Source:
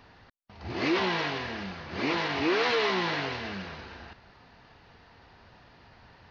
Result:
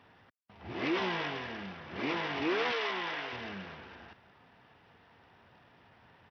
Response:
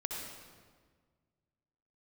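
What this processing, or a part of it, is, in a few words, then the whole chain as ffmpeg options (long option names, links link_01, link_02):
Bluetooth headset: -filter_complex "[0:a]asettb=1/sr,asplit=3[link_01][link_02][link_03];[link_01]atrim=end=2.724[link_04];[link_02]atrim=start=2.72:end=3.33,asetpts=PTS-STARTPTS,afade=type=in:duration=0.004:curve=qsin,afade=type=out:start_time=0.606:duration=0.004:curve=qsin,highpass=frequency=600:poles=1[link_05];[link_03]atrim=start=3.326[link_06];[link_04][link_05]acrossfade=duration=0.004:curve1=hsin:curve2=qsin[link_07];[link_07][link_06]acrossfade=duration=0.004:curve1=qsin:curve2=hsin,highpass=100,aresample=8000,aresample=44100,volume=-5dB" -ar 44100 -c:a sbc -b:a 64k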